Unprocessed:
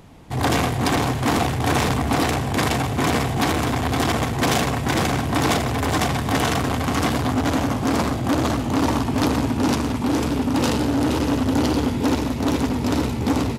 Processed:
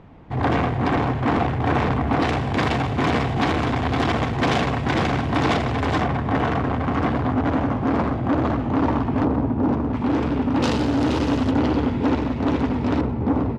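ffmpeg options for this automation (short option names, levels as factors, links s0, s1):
-af "asetnsamples=n=441:p=0,asendcmd='2.22 lowpass f 3500;6.01 lowpass f 1800;9.23 lowpass f 1000;9.93 lowpass f 2300;10.62 lowpass f 4900;11.51 lowpass f 2500;13.01 lowpass f 1200',lowpass=2100"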